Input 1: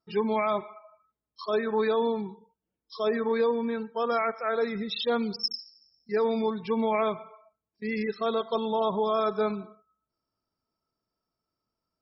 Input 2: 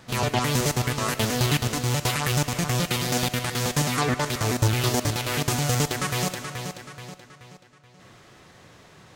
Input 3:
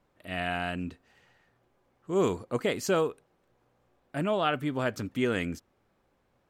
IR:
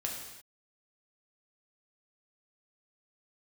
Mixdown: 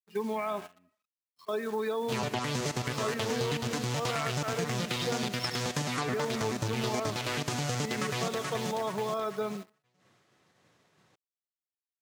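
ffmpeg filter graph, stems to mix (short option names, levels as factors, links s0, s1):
-filter_complex "[0:a]acrusher=bits=8:dc=4:mix=0:aa=0.000001,volume=0.708[s0];[1:a]acrossover=split=7700[s1][s2];[s2]acompressor=threshold=0.00562:ratio=4:attack=1:release=60[s3];[s1][s3]amix=inputs=2:normalize=0,adelay=2000,volume=1.26[s4];[2:a]volume=0.178[s5];[s4][s5]amix=inputs=2:normalize=0,agate=range=0.0224:threshold=0.00708:ratio=3:detection=peak,acompressor=threshold=0.0282:ratio=1.5,volume=1[s6];[s0][s6]amix=inputs=2:normalize=0,agate=range=0.224:threshold=0.0126:ratio=16:detection=peak,highpass=120,acompressor=threshold=0.0355:ratio=3"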